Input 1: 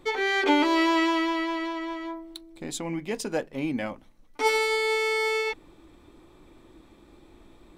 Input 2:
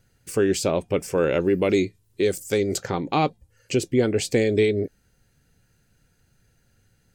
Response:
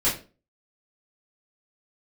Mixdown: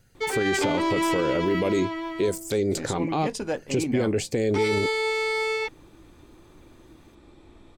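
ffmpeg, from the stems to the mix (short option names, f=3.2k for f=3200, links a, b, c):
-filter_complex "[0:a]asoftclip=type=tanh:threshold=-18.5dB,lowpass=10k,equalizer=f=93:t=o:w=0.77:g=6,adelay=150,volume=1dB[a];[1:a]acrossover=split=1400|5000[b][c][d];[b]acompressor=threshold=-20dB:ratio=4[e];[c]acompressor=threshold=-41dB:ratio=4[f];[d]acompressor=threshold=-38dB:ratio=4[g];[e][f][g]amix=inputs=3:normalize=0,volume=2.5dB[h];[a][h]amix=inputs=2:normalize=0,alimiter=limit=-15.5dB:level=0:latency=1:release=21"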